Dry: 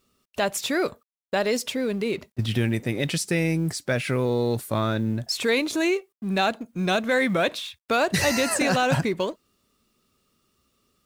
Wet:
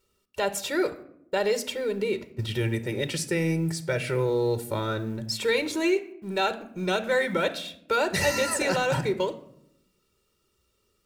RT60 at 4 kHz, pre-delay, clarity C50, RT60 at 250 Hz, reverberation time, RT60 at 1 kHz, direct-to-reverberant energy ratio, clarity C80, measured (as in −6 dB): 0.45 s, 5 ms, 15.0 dB, 1.2 s, 0.75 s, 0.65 s, 11.0 dB, 18.0 dB